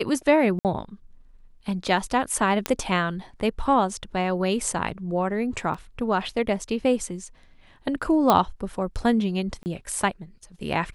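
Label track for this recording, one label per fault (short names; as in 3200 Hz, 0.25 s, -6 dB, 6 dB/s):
0.590000	0.650000	gap 58 ms
2.660000	2.660000	pop -8 dBFS
5.740000	5.740000	gap 4.4 ms
8.300000	8.300000	pop -5 dBFS
9.630000	9.660000	gap 29 ms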